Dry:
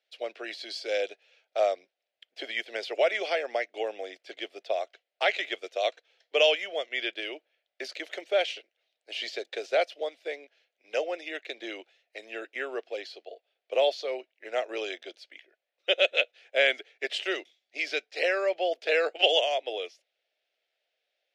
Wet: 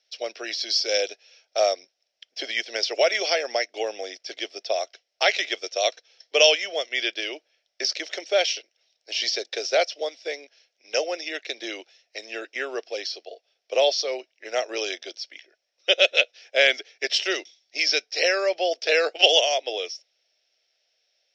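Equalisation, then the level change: synth low-pass 5500 Hz, resonance Q 14; +3.5 dB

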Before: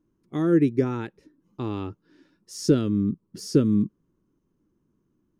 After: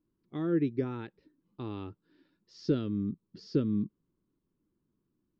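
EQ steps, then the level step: synth low-pass 4400 Hz, resonance Q 2.8; air absorption 200 m; -8.5 dB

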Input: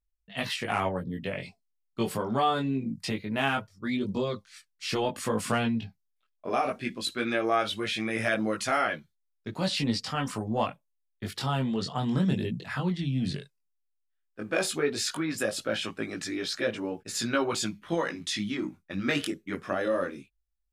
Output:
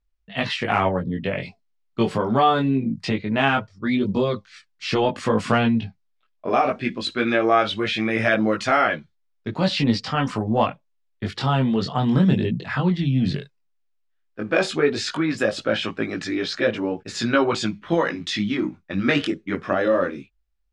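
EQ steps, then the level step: air absorption 130 m; +8.5 dB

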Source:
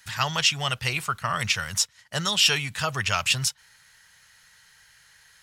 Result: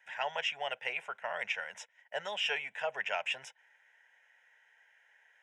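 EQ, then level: HPF 350 Hz 24 dB/oct; tape spacing loss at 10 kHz 30 dB; fixed phaser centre 1200 Hz, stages 6; 0.0 dB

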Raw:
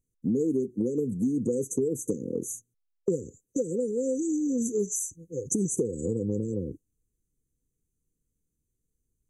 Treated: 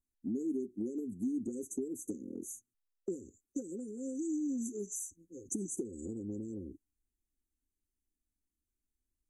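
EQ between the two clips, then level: fixed phaser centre 720 Hz, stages 8; -7.0 dB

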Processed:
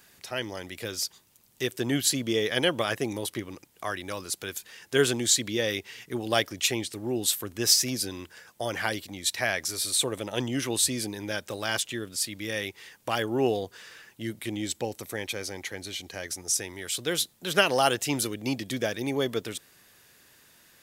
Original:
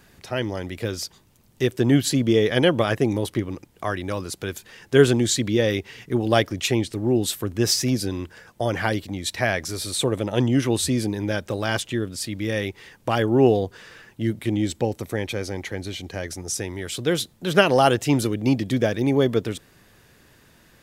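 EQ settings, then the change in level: tilt +2.5 dB/oct; -5.0 dB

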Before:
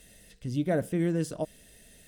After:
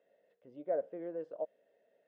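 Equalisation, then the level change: ladder band-pass 620 Hz, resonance 55%; air absorption 67 m; +1.5 dB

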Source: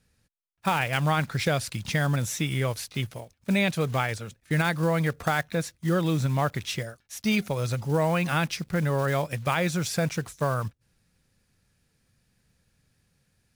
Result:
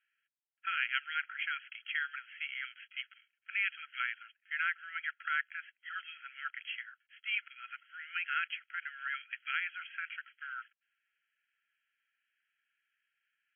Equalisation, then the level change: brick-wall FIR band-pass 1300–3300 Hz; -3.5 dB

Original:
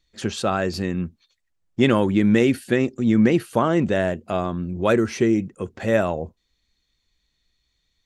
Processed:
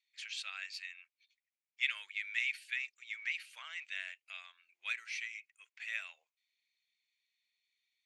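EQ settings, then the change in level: LPF 9700 Hz 12 dB/oct; dynamic EQ 4100 Hz, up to +4 dB, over -46 dBFS, Q 2.3; ladder high-pass 2100 Hz, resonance 70%; -3.5 dB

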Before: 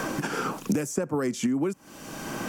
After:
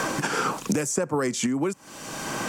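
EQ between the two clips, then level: graphic EQ 125/500/1000/2000/4000/8000 Hz +4/+4/+6/+5/+6/+9 dB; -2.0 dB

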